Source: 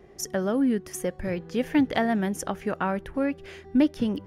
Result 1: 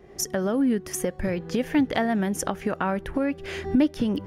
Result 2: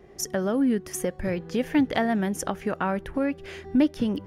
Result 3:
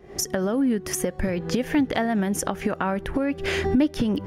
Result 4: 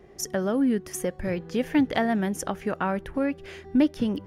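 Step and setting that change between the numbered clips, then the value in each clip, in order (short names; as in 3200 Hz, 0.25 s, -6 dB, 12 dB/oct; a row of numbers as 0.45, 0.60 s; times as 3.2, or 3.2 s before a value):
recorder AGC, rising by: 35, 13, 86, 5.3 dB/s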